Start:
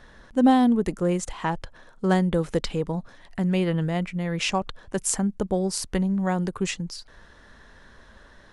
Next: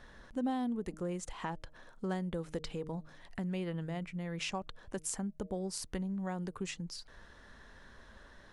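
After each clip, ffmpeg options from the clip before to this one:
ffmpeg -i in.wav -af "bandreject=frequency=155.5:width_type=h:width=4,bandreject=frequency=311:width_type=h:width=4,bandreject=frequency=466.5:width_type=h:width=4,bandreject=frequency=622:width_type=h:width=4,acompressor=threshold=-36dB:ratio=2,volume=-5dB" out.wav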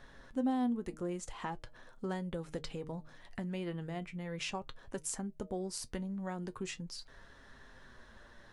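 ffmpeg -i in.wav -af "flanger=delay=7.3:depth=1.4:regen=61:speed=0.41:shape=sinusoidal,volume=3.5dB" out.wav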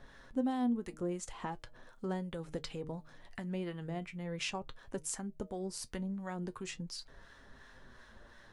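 ffmpeg -i in.wav -filter_complex "[0:a]acrossover=split=860[link_01][link_02];[link_01]aeval=exprs='val(0)*(1-0.5/2+0.5/2*cos(2*PI*2.8*n/s))':channel_layout=same[link_03];[link_02]aeval=exprs='val(0)*(1-0.5/2-0.5/2*cos(2*PI*2.8*n/s))':channel_layout=same[link_04];[link_03][link_04]amix=inputs=2:normalize=0,volume=2dB" out.wav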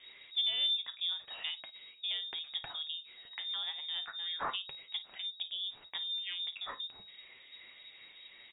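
ffmpeg -i in.wav -af "highshelf=frequency=3000:gain=10,lowpass=frequency=3200:width_type=q:width=0.5098,lowpass=frequency=3200:width_type=q:width=0.6013,lowpass=frequency=3200:width_type=q:width=0.9,lowpass=frequency=3200:width_type=q:width=2.563,afreqshift=-3800,aecho=1:1:35|53:0.133|0.15" out.wav

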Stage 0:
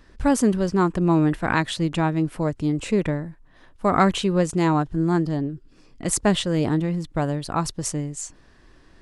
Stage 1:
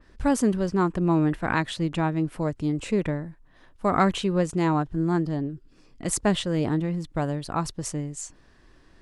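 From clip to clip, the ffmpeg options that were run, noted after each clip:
ffmpeg -i in.wav -af "adynamicequalizer=threshold=0.00891:dfrequency=3500:dqfactor=0.7:tfrequency=3500:tqfactor=0.7:attack=5:release=100:ratio=0.375:range=2:mode=cutabove:tftype=highshelf,volume=-3dB" out.wav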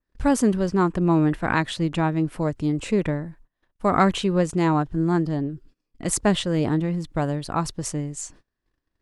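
ffmpeg -i in.wav -af "agate=range=-29dB:threshold=-49dB:ratio=16:detection=peak,volume=2.5dB" out.wav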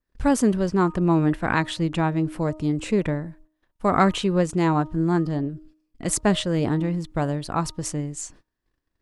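ffmpeg -i in.wav -af "bandreject=frequency=310.5:width_type=h:width=4,bandreject=frequency=621:width_type=h:width=4,bandreject=frequency=931.5:width_type=h:width=4,bandreject=frequency=1242:width_type=h:width=4" out.wav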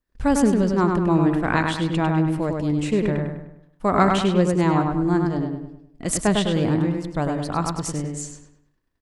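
ffmpeg -i in.wav -filter_complex "[0:a]asplit=2[link_01][link_02];[link_02]adelay=101,lowpass=frequency=3800:poles=1,volume=-3.5dB,asplit=2[link_03][link_04];[link_04]adelay=101,lowpass=frequency=3800:poles=1,volume=0.44,asplit=2[link_05][link_06];[link_06]adelay=101,lowpass=frequency=3800:poles=1,volume=0.44,asplit=2[link_07][link_08];[link_08]adelay=101,lowpass=frequency=3800:poles=1,volume=0.44,asplit=2[link_09][link_10];[link_10]adelay=101,lowpass=frequency=3800:poles=1,volume=0.44,asplit=2[link_11][link_12];[link_12]adelay=101,lowpass=frequency=3800:poles=1,volume=0.44[link_13];[link_01][link_03][link_05][link_07][link_09][link_11][link_13]amix=inputs=7:normalize=0" out.wav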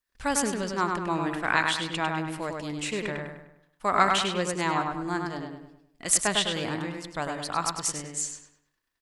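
ffmpeg -i in.wav -af "tiltshelf=frequency=650:gain=-9.5,volume=-6dB" out.wav

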